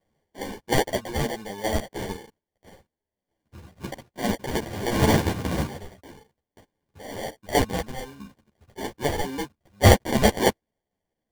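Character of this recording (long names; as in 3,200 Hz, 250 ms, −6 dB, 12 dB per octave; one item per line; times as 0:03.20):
aliases and images of a low sample rate 1,300 Hz, jitter 0%
chopped level 0.61 Hz, depth 65%, duty 45%
a shimmering, thickened sound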